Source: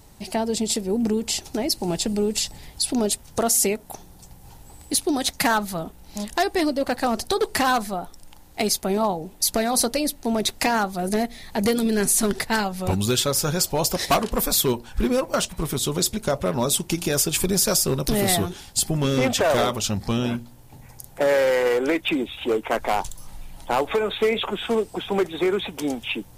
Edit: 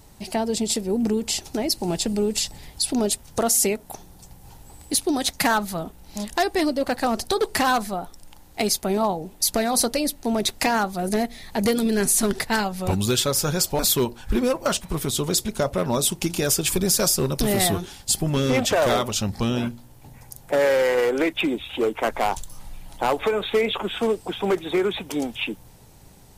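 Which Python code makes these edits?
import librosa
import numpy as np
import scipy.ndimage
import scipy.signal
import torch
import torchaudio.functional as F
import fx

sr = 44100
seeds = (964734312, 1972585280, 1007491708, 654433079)

y = fx.edit(x, sr, fx.cut(start_s=13.79, length_s=0.68), tone=tone)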